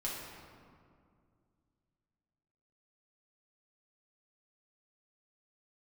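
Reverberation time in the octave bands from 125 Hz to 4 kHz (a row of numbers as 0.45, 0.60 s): 3.1, 2.9, 2.4, 2.1, 1.6, 1.2 s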